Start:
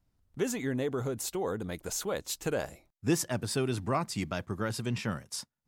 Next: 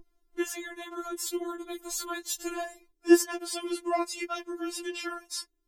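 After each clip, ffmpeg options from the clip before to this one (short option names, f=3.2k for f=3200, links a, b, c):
-af "aeval=exprs='val(0)+0.00708*(sin(2*PI*60*n/s)+sin(2*PI*2*60*n/s)/2+sin(2*PI*3*60*n/s)/3+sin(2*PI*4*60*n/s)/4+sin(2*PI*5*60*n/s)/5)':c=same,afftfilt=real='re*4*eq(mod(b,16),0)':imag='im*4*eq(mod(b,16),0)':win_size=2048:overlap=0.75,volume=4.5dB"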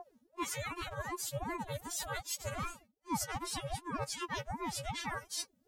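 -af "areverse,acompressor=threshold=-39dB:ratio=5,areverse,aeval=exprs='val(0)*sin(2*PI*460*n/s+460*0.55/2.6*sin(2*PI*2.6*n/s))':c=same,volume=5.5dB"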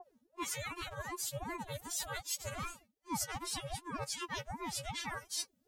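-af "adynamicequalizer=threshold=0.00316:dfrequency=2000:dqfactor=0.7:tfrequency=2000:tqfactor=0.7:attack=5:release=100:ratio=0.375:range=2:mode=boostabove:tftype=highshelf,volume=-3dB"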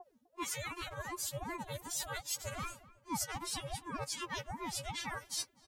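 -filter_complex "[0:a]asplit=2[a][b];[b]adelay=252,lowpass=f=1.5k:p=1,volume=-18dB,asplit=2[c][d];[d]adelay=252,lowpass=f=1.5k:p=1,volume=0.39,asplit=2[e][f];[f]adelay=252,lowpass=f=1.5k:p=1,volume=0.39[g];[a][c][e][g]amix=inputs=4:normalize=0"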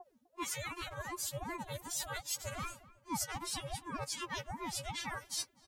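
-af "bandreject=f=450:w=12"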